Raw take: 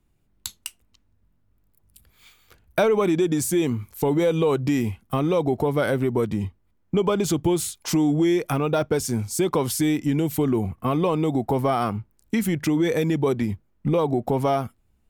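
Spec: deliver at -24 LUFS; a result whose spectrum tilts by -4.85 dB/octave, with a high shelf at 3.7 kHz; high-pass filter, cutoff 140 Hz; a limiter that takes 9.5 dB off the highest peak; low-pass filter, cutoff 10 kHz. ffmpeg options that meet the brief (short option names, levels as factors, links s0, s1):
-af "highpass=140,lowpass=10000,highshelf=f=3700:g=7,volume=1.19,alimiter=limit=0.2:level=0:latency=1"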